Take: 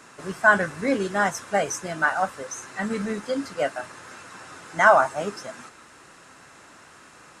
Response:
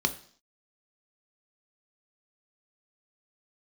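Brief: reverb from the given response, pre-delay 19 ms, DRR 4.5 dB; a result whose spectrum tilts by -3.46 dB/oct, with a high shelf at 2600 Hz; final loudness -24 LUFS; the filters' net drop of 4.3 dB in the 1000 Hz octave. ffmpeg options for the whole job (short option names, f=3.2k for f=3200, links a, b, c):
-filter_complex "[0:a]equalizer=f=1k:t=o:g=-6.5,highshelf=f=2.6k:g=4,asplit=2[a][b];[1:a]atrim=start_sample=2205,adelay=19[c];[b][c]afir=irnorm=-1:irlink=0,volume=-13.5dB[d];[a][d]amix=inputs=2:normalize=0,volume=0.5dB"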